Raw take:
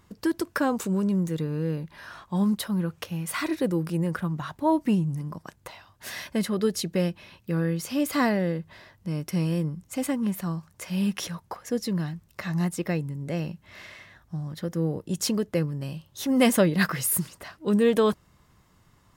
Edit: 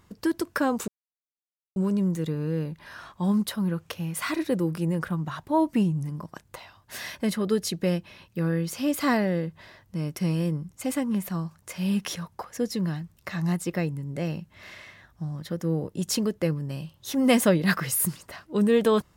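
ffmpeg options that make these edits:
ffmpeg -i in.wav -filter_complex "[0:a]asplit=2[link_01][link_02];[link_01]atrim=end=0.88,asetpts=PTS-STARTPTS,afade=type=out:start_time=0.876:duration=0.004:curve=hsin,apad=pad_dur=0.88[link_03];[link_02]atrim=start=0.88,asetpts=PTS-STARTPTS,afade=type=in:duration=0.004:curve=hsin[link_04];[link_03][link_04]concat=n=2:v=0:a=1" out.wav

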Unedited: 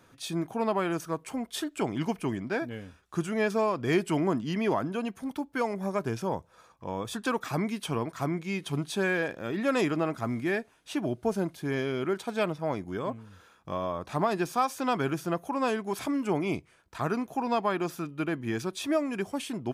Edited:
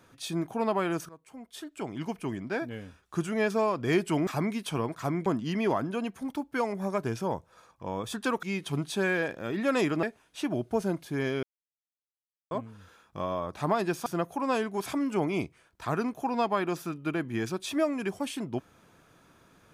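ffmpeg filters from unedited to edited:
ffmpeg -i in.wav -filter_complex "[0:a]asplit=9[link_01][link_02][link_03][link_04][link_05][link_06][link_07][link_08][link_09];[link_01]atrim=end=1.09,asetpts=PTS-STARTPTS,afade=type=out:start_time=1.086:duration=0.004:curve=hsin:silence=0.0944061[link_10];[link_02]atrim=start=1.09:end=4.272,asetpts=PTS-STARTPTS,afade=type=in:duration=1.73:silence=0.0944061[link_11];[link_03]atrim=start=7.438:end=8.432[link_12];[link_04]atrim=start=4.268:end=7.442[link_13];[link_05]atrim=start=8.428:end=10.032[link_14];[link_06]atrim=start=10.548:end=11.95,asetpts=PTS-STARTPTS,afade=type=out:start_time=1.398:duration=0.004:curve=hsin[link_15];[link_07]atrim=start=11.95:end=13.03,asetpts=PTS-STARTPTS,volume=0[link_16];[link_08]atrim=start=13.03:end=14.582,asetpts=PTS-STARTPTS,afade=type=in:duration=0.004:curve=hsin[link_17];[link_09]atrim=start=15.188[link_18];[link_10][link_11]concat=n=2:v=0:a=1[link_19];[link_19][link_12]acrossfade=duration=0.004:curve1=hsin:curve2=hsin[link_20];[link_20][link_13]acrossfade=duration=0.004:curve1=hsin:curve2=hsin[link_21];[link_21][link_14]acrossfade=duration=0.004:curve1=hsin:curve2=hsin[link_22];[link_15][link_16][link_17]concat=n=3:v=0:a=1[link_23];[link_22][link_23]acrossfade=duration=0.004:curve1=hsin:curve2=hsin[link_24];[link_24][link_18]acrossfade=duration=0.004:curve1=hsin:curve2=hsin" out.wav

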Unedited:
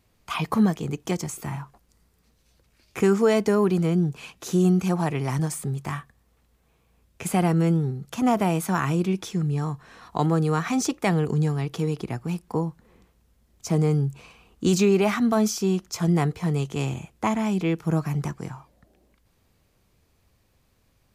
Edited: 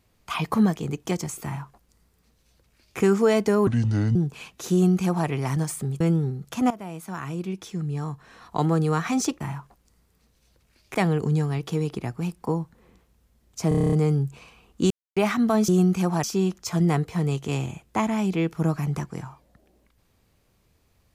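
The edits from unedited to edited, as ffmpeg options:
ffmpeg -i in.wav -filter_complex "[0:a]asplit=19[link_01][link_02][link_03][link_04][link_05][link_06][link_07][link_08][link_09][link_10][link_11][link_12][link_13][link_14][link_15][link_16][link_17][link_18][link_19];[link_01]atrim=end=3.674[link_20];[link_02]atrim=start=3.67:end=3.98,asetpts=PTS-STARTPTS,asetrate=28224,aresample=44100[link_21];[link_03]atrim=start=3.976:end=5.832[link_22];[link_04]atrim=start=7.608:end=8.31,asetpts=PTS-STARTPTS,afade=type=out:start_time=0.698:duration=0.004:curve=hsin:silence=0.141254[link_23];[link_05]atrim=start=8.31:end=11.012,asetpts=PTS-STARTPTS,afade=type=in:duration=2.01:silence=0.141254[link_24];[link_06]atrim=start=1.438:end=2.982[link_25];[link_07]atrim=start=11.008:end=13.782[link_26];[link_08]atrim=start=13.748:end=13.782[link_27];[link_09]atrim=start=13.748:end=13.782[link_28];[link_10]atrim=start=13.748:end=13.782[link_29];[link_11]atrim=start=13.748:end=13.782[link_30];[link_12]atrim=start=13.748:end=13.782[link_31];[link_13]atrim=start=13.748:end=13.782[link_32];[link_14]atrim=start=13.748:end=13.782[link_33];[link_15]atrim=start=13.748:end=14.73,asetpts=PTS-STARTPTS,afade=type=out:start_time=0.978:duration=0.004:curve=hsin[link_34];[link_16]atrim=start=14.73:end=14.99,asetpts=PTS-STARTPTS,volume=0[link_35];[link_17]atrim=start=14.99:end=15.512,asetpts=PTS-STARTPTS,afade=type=in:duration=0.004:curve=hsin[link_36];[link_18]atrim=start=4.548:end=5.102[link_37];[link_19]atrim=start=15.508[link_38];[link_20][link_21]acrossfade=duration=0.004:curve1=hsin:curve2=hsin[link_39];[link_39][link_22]acrossfade=duration=0.004:curve1=hsin:curve2=hsin[link_40];[link_23][link_24]concat=n=2:v=0:a=1[link_41];[link_40][link_41]acrossfade=duration=0.004:curve1=hsin:curve2=hsin[link_42];[link_42][link_25]acrossfade=duration=0.004:curve1=hsin:curve2=hsin[link_43];[link_43][link_26]acrossfade=duration=0.004:curve1=hsin:curve2=hsin[link_44];[link_44][link_27]acrossfade=duration=0.004:curve1=hsin:curve2=hsin[link_45];[link_45][link_28]acrossfade=duration=0.004:curve1=hsin:curve2=hsin[link_46];[link_46][link_29]acrossfade=duration=0.004:curve1=hsin:curve2=hsin[link_47];[link_47][link_30]acrossfade=duration=0.004:curve1=hsin:curve2=hsin[link_48];[link_48][link_31]acrossfade=duration=0.004:curve1=hsin:curve2=hsin[link_49];[link_49][link_32]acrossfade=duration=0.004:curve1=hsin:curve2=hsin[link_50];[link_50][link_33]acrossfade=duration=0.004:curve1=hsin:curve2=hsin[link_51];[link_34][link_35][link_36]concat=n=3:v=0:a=1[link_52];[link_51][link_52]acrossfade=duration=0.004:curve1=hsin:curve2=hsin[link_53];[link_53][link_37]acrossfade=duration=0.004:curve1=hsin:curve2=hsin[link_54];[link_54][link_38]acrossfade=duration=0.004:curve1=hsin:curve2=hsin" out.wav

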